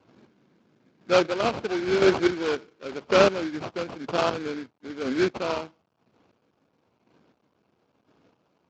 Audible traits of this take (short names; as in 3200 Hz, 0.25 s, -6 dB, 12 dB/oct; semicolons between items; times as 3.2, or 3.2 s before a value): aliases and images of a low sample rate 1900 Hz, jitter 20%; chopped level 0.99 Hz, depth 60%, duty 25%; a quantiser's noise floor 12-bit, dither none; Speex